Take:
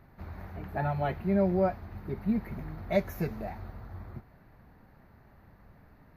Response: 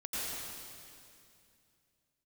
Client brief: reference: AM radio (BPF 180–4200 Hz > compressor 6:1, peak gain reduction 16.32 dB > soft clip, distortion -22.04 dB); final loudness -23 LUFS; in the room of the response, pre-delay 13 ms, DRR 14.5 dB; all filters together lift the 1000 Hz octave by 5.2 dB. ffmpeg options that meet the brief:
-filter_complex "[0:a]equalizer=f=1k:t=o:g=8,asplit=2[a][b];[1:a]atrim=start_sample=2205,adelay=13[c];[b][c]afir=irnorm=-1:irlink=0,volume=-18.5dB[d];[a][d]amix=inputs=2:normalize=0,highpass=180,lowpass=4.2k,acompressor=threshold=-36dB:ratio=6,asoftclip=threshold=-29dB,volume=19.5dB"

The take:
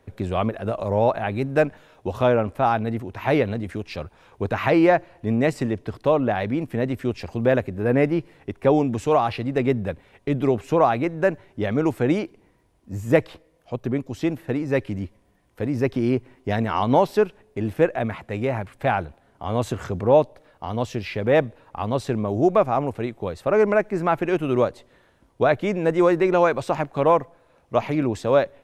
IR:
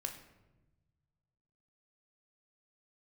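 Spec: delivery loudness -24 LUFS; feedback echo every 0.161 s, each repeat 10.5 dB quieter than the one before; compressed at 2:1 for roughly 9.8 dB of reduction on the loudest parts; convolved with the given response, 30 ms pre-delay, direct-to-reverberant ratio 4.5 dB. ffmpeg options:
-filter_complex "[0:a]acompressor=threshold=-30dB:ratio=2,aecho=1:1:161|322|483:0.299|0.0896|0.0269,asplit=2[a][b];[1:a]atrim=start_sample=2205,adelay=30[c];[b][c]afir=irnorm=-1:irlink=0,volume=-4dB[d];[a][d]amix=inputs=2:normalize=0,volume=4.5dB"

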